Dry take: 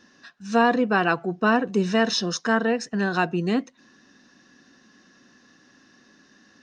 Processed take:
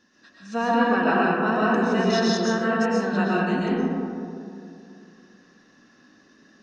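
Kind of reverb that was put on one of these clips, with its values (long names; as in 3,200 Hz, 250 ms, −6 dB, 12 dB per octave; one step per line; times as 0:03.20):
comb and all-pass reverb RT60 2.6 s, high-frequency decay 0.3×, pre-delay 85 ms, DRR −7 dB
level −7.5 dB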